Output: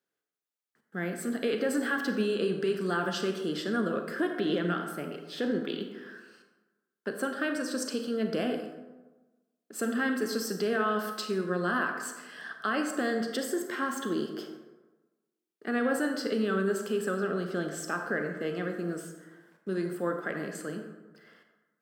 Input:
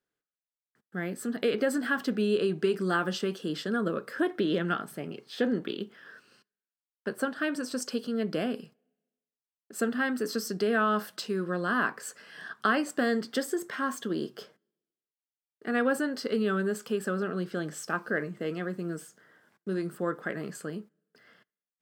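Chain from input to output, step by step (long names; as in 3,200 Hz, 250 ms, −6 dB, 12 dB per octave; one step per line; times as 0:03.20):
brickwall limiter −20 dBFS, peak gain reduction 6.5 dB
high-pass filter 160 Hz
convolution reverb RT60 1.2 s, pre-delay 28 ms, DRR 5 dB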